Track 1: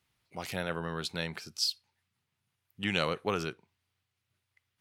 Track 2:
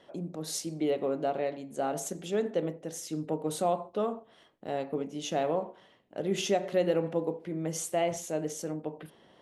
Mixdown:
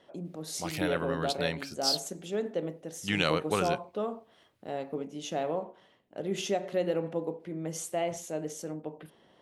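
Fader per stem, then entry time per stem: +2.0, −2.5 decibels; 0.25, 0.00 seconds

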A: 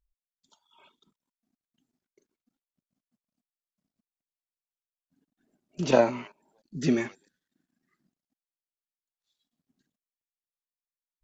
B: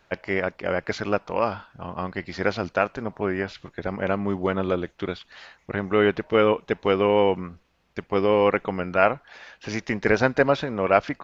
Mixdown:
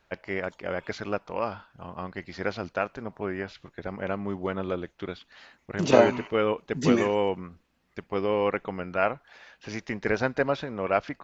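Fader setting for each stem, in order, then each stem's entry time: +2.0, −6.0 decibels; 0.00, 0.00 seconds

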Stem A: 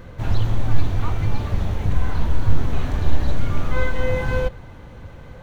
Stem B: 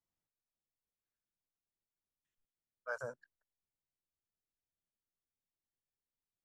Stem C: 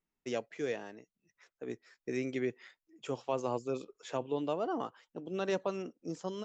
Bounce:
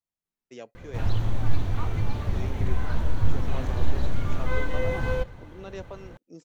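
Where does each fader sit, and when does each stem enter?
−5.0, −4.0, −6.5 decibels; 0.75, 0.00, 0.25 seconds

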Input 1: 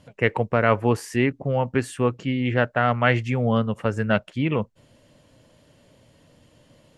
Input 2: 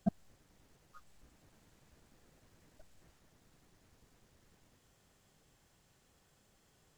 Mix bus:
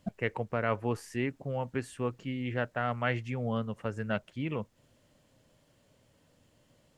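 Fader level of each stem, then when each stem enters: −11.0, −3.5 decibels; 0.00, 0.00 seconds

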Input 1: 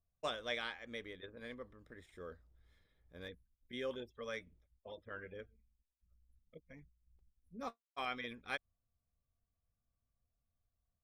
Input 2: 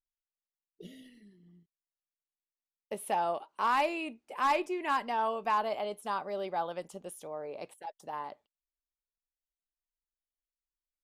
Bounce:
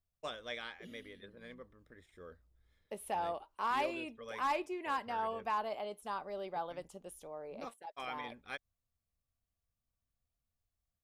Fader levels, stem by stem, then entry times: −3.0, −6.0 decibels; 0.00, 0.00 seconds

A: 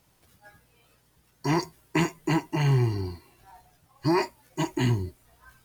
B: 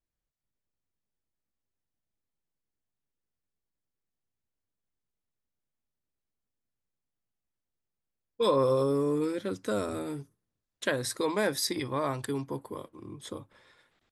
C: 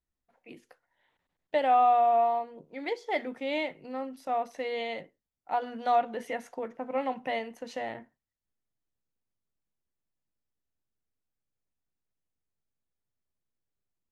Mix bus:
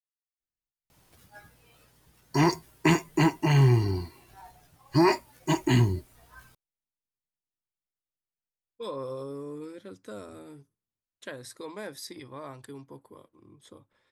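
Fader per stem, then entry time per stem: +2.5 dB, −11.0 dB, muted; 0.90 s, 0.40 s, muted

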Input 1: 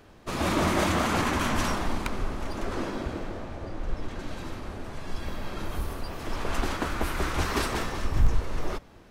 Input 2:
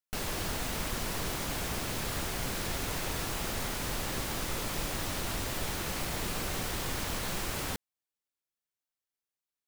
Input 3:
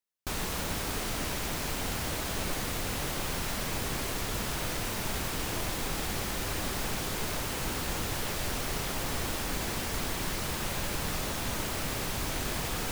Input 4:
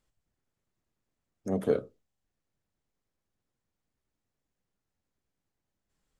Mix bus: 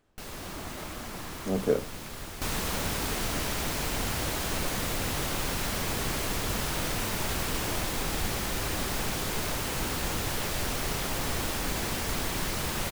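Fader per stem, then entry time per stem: −18.0, −6.5, +2.0, +1.0 decibels; 0.00, 0.05, 2.15, 0.00 seconds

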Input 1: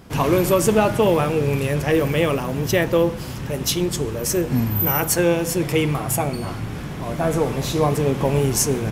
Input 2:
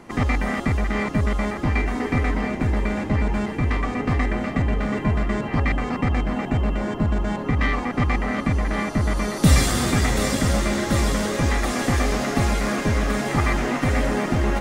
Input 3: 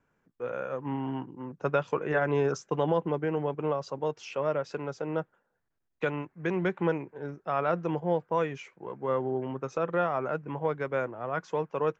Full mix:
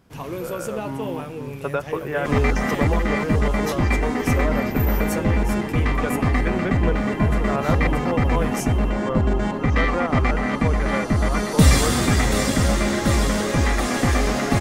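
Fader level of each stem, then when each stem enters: −13.0, +1.5, +1.5 decibels; 0.00, 2.15, 0.00 seconds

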